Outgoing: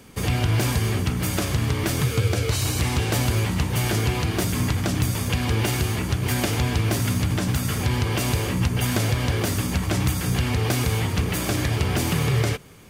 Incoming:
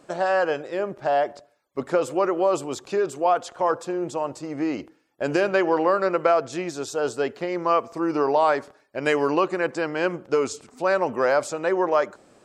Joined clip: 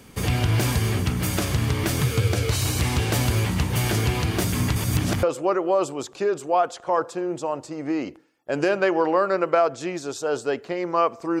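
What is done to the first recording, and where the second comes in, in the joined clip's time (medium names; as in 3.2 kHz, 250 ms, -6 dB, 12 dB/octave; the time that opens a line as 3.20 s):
outgoing
4.76–5.23 s: reverse
5.23 s: go over to incoming from 1.95 s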